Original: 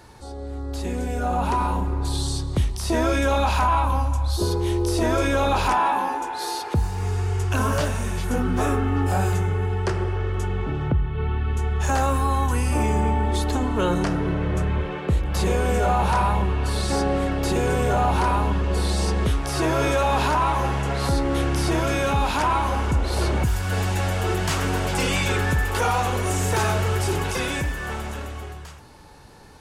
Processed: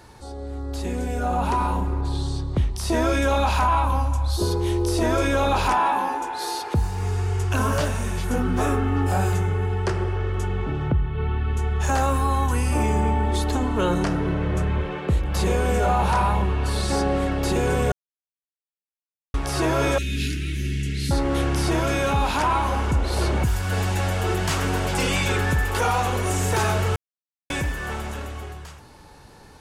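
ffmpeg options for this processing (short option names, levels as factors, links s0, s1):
-filter_complex "[0:a]asettb=1/sr,asplit=3[s0][s1][s2];[s0]atrim=end=2.014[s3];[s1]atrim=start=2.01:end=2.76,asetpts=PTS-STARTPTS,afade=t=in:d=0.004:c=qsin,afade=t=out:st=0.746:d=0.004:c=qsin,aemphasis=mode=reproduction:type=75kf[s4];[s2]atrim=start=2.756[s5];[s3][s4]acrossfade=d=0.004:c1=hsin:c2=qsin[s6];[s6][s5]acrossfade=d=0.004:c1=qsin:c2=hsin,asettb=1/sr,asplit=3[s7][s8][s9];[s7]atrim=end=19.984[s10];[s8]atrim=start=19.98:end=21.11,asetpts=PTS-STARTPTS,afade=t=in:d=0.004:c=qsin,afade=t=out:st=1.126:d=0.004:c=qsin,asuperstop=centerf=830:order=8:qfactor=0.5[s11];[s9]atrim=start=21.106[s12];[s10][s11]acrossfade=d=0.004:c1=hsin:c2=qsin[s13];[s13][s12]acrossfade=d=0.004:c1=qsin:c2=hsin,asplit=5[s14][s15][s16][s17][s18];[s14]atrim=end=17.92,asetpts=PTS-STARTPTS,afade=t=out:st=17.916:d=0.004:c=hsin[s19];[s15]atrim=start=17.92:end=19.34,asetpts=PTS-STARTPTS,volume=0[s20];[s16]atrim=start=19.34:end=26.96,asetpts=PTS-STARTPTS,afade=t=in:d=0.004:c=hsin,afade=t=out:st=7.616:d=0.004:c=hsin[s21];[s17]atrim=start=26.96:end=27.5,asetpts=PTS-STARTPTS,volume=0[s22];[s18]atrim=start=27.5,asetpts=PTS-STARTPTS,afade=t=in:d=0.004:c=hsin[s23];[s19][s20][s21][s22][s23]concat=n=5:v=0:a=1"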